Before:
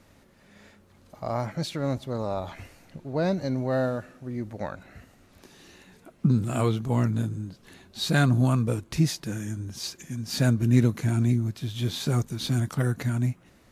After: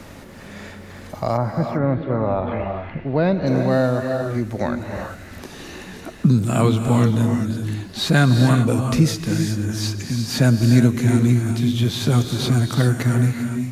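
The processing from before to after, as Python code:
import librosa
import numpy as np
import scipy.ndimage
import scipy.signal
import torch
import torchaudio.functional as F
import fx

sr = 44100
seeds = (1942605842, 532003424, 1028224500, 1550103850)

y = fx.lowpass(x, sr, hz=fx.line((1.36, 1500.0), (3.46, 3500.0)), slope=24, at=(1.36, 3.46), fade=0.02)
y = fx.rev_gated(y, sr, seeds[0], gate_ms=420, shape='rising', drr_db=5.5)
y = fx.band_squash(y, sr, depth_pct=40)
y = y * 10.0 ** (7.0 / 20.0)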